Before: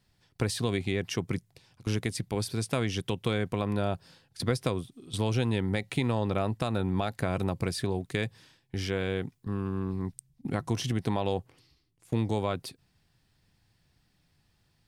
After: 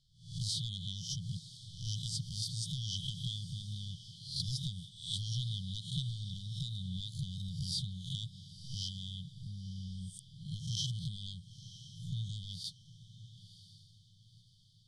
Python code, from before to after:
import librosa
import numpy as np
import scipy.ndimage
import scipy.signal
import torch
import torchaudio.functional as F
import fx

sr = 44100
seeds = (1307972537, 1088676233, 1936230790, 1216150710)

y = fx.spec_swells(x, sr, rise_s=0.49)
y = fx.peak_eq(y, sr, hz=75.0, db=-10.5, octaves=2.6)
y = np.clip(y, -10.0 ** (-21.5 / 20.0), 10.0 ** (-21.5 / 20.0))
y = fx.brickwall_bandstop(y, sr, low_hz=180.0, high_hz=3000.0)
y = fx.air_absorb(y, sr, metres=78.0)
y = fx.echo_diffused(y, sr, ms=994, feedback_pct=40, wet_db=-14)
y = y * librosa.db_to_amplitude(1.5)